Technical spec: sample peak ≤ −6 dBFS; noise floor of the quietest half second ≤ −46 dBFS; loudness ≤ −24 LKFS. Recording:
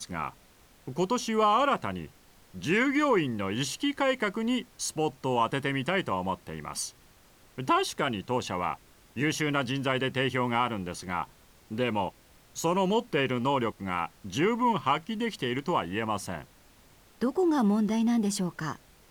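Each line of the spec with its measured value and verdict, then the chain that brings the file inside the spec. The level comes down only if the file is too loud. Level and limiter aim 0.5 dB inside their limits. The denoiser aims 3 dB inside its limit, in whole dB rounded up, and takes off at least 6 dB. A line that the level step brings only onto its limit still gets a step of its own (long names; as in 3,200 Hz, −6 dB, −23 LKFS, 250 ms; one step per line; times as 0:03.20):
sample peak −12.0 dBFS: in spec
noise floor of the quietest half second −58 dBFS: in spec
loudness −29.0 LKFS: in spec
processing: no processing needed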